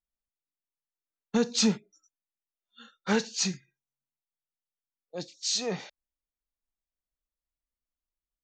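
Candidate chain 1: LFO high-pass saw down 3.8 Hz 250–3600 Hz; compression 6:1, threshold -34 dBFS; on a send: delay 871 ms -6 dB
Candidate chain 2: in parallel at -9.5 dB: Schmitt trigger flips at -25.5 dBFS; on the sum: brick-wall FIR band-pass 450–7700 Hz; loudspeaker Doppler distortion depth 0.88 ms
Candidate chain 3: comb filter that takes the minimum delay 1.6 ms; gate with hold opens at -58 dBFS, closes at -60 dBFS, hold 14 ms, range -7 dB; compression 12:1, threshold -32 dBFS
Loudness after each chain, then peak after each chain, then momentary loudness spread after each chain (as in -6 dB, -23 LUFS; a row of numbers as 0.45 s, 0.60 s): -40.0 LUFS, -31.0 LUFS, -38.0 LUFS; -21.5 dBFS, -13.5 dBFS, -21.0 dBFS; 15 LU, 16 LU, 16 LU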